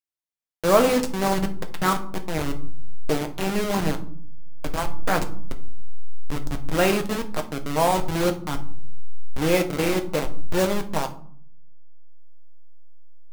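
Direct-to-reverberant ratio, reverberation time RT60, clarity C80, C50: 5.0 dB, 0.55 s, 18.5 dB, 14.0 dB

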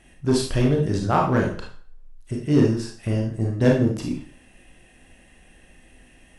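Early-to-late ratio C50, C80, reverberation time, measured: 5.0 dB, 10.5 dB, 0.45 s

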